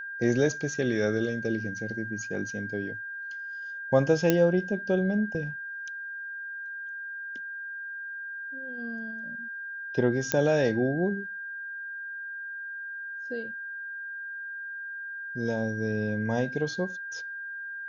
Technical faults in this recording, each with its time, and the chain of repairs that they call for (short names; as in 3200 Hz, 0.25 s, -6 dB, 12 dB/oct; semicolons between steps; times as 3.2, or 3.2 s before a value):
tone 1600 Hz -35 dBFS
4.3 pop -8 dBFS
10.32 pop -7 dBFS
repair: de-click; notch 1600 Hz, Q 30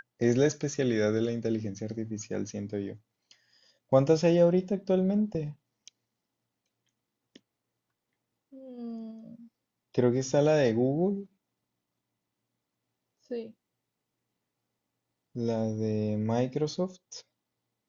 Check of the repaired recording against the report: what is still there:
none